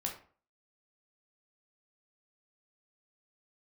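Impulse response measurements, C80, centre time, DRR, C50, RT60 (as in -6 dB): 13.0 dB, 21 ms, 0.0 dB, 8.0 dB, 0.45 s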